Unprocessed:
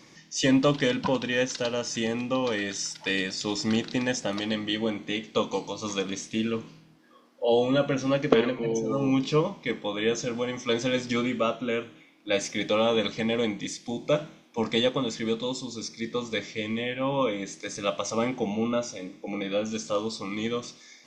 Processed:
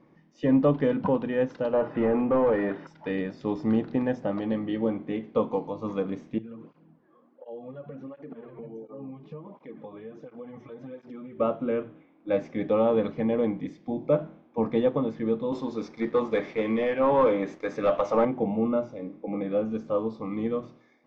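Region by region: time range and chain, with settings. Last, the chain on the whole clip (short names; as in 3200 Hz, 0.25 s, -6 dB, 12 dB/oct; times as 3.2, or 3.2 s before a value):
1.73–2.87 LPF 3500 Hz 24 dB/oct + high shelf 2600 Hz -10 dB + overdrive pedal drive 21 dB, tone 2100 Hz, clips at -15.5 dBFS
6.38–11.4 compressor 10:1, threshold -36 dBFS + tape flanging out of phase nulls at 1.4 Hz, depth 4.3 ms
15.52–18.25 HPF 600 Hz 6 dB/oct + sample leveller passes 3
whole clip: LPF 1000 Hz 12 dB/oct; notches 60/120 Hz; AGC gain up to 5 dB; gain -3 dB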